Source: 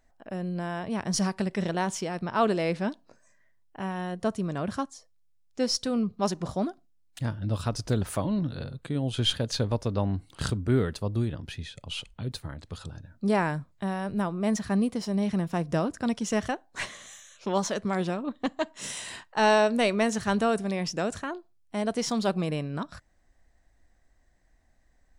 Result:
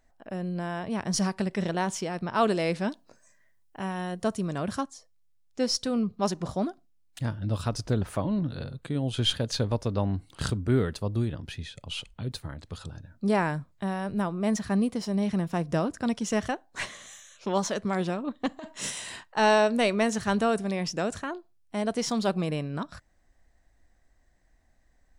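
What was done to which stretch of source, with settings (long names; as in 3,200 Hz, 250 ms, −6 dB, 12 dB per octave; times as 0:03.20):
0:02.34–0:04.81: high-shelf EQ 5,000 Hz +7 dB
0:07.87–0:08.50: high-shelf EQ 4,500 Hz −9.5 dB
0:18.49–0:18.90: compressor whose output falls as the input rises −32 dBFS, ratio −0.5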